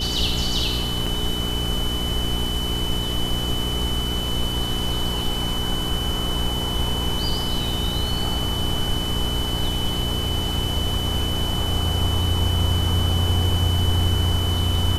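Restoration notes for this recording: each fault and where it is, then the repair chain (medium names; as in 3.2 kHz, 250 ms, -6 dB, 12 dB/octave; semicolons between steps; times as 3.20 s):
hum 60 Hz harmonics 7 -28 dBFS
whine 3 kHz -27 dBFS
1.06–1.07 s: dropout 5.1 ms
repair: de-hum 60 Hz, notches 7; band-stop 3 kHz, Q 30; interpolate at 1.06 s, 5.1 ms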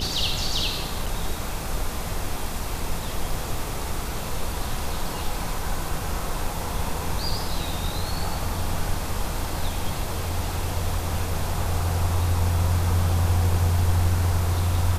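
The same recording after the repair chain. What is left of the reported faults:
nothing left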